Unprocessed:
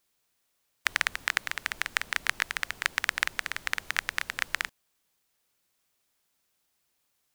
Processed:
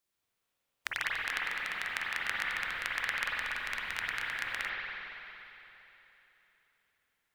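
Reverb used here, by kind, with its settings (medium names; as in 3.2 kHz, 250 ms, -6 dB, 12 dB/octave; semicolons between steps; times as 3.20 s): spring tank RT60 3.3 s, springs 46/57 ms, chirp 50 ms, DRR -6 dB; trim -10 dB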